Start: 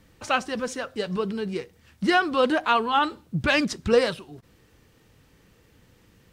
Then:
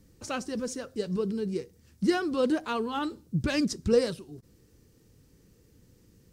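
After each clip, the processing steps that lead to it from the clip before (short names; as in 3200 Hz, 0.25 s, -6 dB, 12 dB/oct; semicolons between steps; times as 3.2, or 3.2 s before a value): band shelf 1500 Hz -11 dB 2.9 oct; gain -1 dB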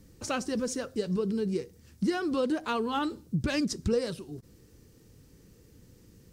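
compressor 3:1, threshold -30 dBFS, peak gain reduction 10 dB; gain +3.5 dB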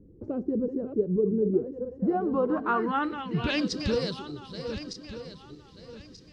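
regenerating reverse delay 0.617 s, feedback 53%, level -8 dB; low-pass sweep 390 Hz -> 4400 Hz, 1.61–3.77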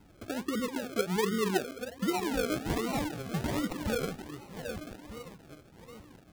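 decimation with a swept rate 37×, swing 60% 1.3 Hz; gain -4.5 dB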